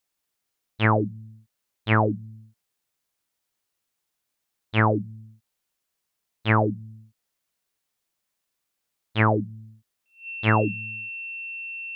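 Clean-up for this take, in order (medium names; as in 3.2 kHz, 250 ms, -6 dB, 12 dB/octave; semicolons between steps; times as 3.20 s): band-stop 2.7 kHz, Q 30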